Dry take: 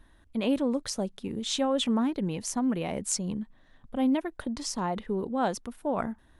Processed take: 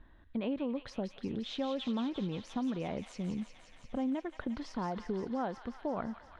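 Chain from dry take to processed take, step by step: bell 5700 Hz -4.5 dB 0.73 oct; compressor 3:1, threshold -33 dBFS, peak gain reduction 9 dB; air absorption 260 m; thin delay 0.175 s, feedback 80%, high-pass 1600 Hz, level -7 dB

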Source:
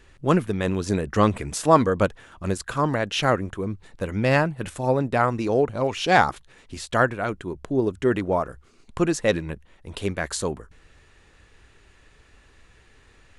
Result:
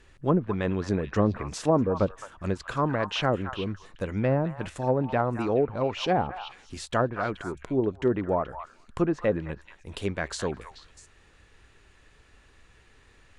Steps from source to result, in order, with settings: treble ducked by the level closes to 610 Hz, closed at -14.5 dBFS; delay with a stepping band-pass 0.215 s, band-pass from 1200 Hz, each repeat 1.4 oct, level -6.5 dB; gain -3 dB

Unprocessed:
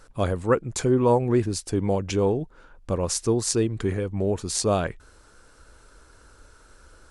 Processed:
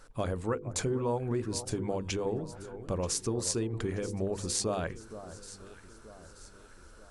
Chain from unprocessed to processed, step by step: compressor, threshold -24 dBFS, peak gain reduction 9.5 dB; notches 50/100/150/200/250/300/350/400/450/500 Hz; echo with dull and thin repeats by turns 0.466 s, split 1300 Hz, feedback 66%, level -12.5 dB; gain -3 dB

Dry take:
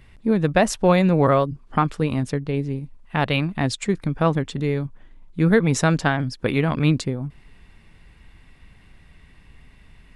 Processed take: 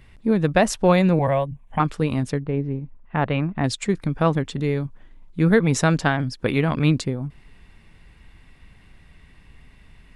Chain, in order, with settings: 1.19–1.8 fixed phaser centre 1300 Hz, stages 6; 2.42–3.64 LPF 1800 Hz 12 dB/oct

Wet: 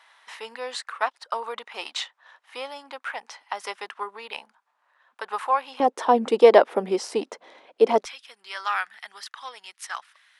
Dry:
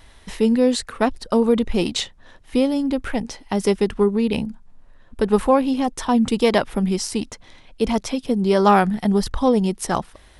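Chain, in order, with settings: HPF 980 Hz 24 dB/oct, from 5.8 s 450 Hz, from 8.05 s 1500 Hz; tilt -4.5 dB/oct; gain +3 dB

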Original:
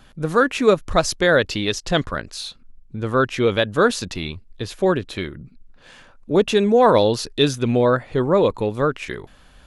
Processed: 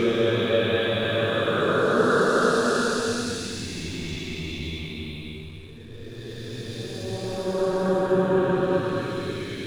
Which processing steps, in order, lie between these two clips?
Paulstretch 5.7×, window 0.50 s, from 3.44; backlash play -44.5 dBFS; gain -3.5 dB

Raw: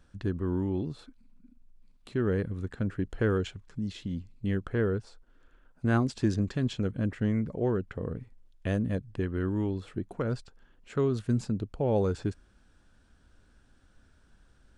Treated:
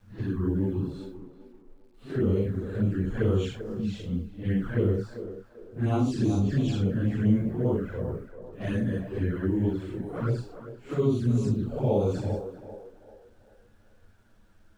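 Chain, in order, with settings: phase scrambler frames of 0.2 s; in parallel at -1.5 dB: limiter -24.5 dBFS, peak gain reduction 10 dB; on the sum: envelope flanger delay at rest 10.5 ms, full sweep at -20.5 dBFS; bit-crush 11-bit; narrowing echo 0.392 s, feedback 41%, band-pass 670 Hz, level -8 dB; mismatched tape noise reduction decoder only

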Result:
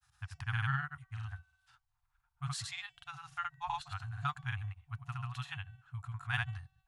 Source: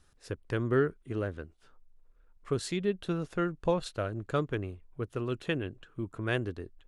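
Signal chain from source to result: FFT band-reject 140–710 Hz; HPF 71 Hz 12 dB/oct; de-hum 381 Hz, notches 21; grains, pitch spread up and down by 0 st; hard clip -20 dBFS, distortion -50 dB

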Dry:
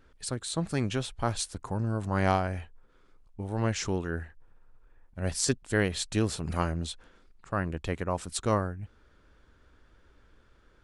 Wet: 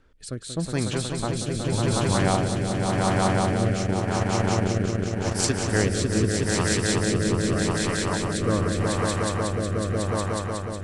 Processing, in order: swelling echo 0.183 s, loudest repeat 5, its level -3 dB; rotary speaker horn 0.85 Hz; 3.85–5.48 transient shaper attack +5 dB, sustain -10 dB; gain +3 dB

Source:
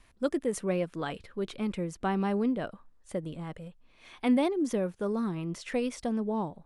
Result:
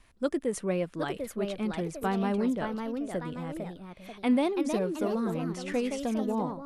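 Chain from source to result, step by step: echoes that change speed 0.795 s, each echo +2 st, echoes 2, each echo -6 dB

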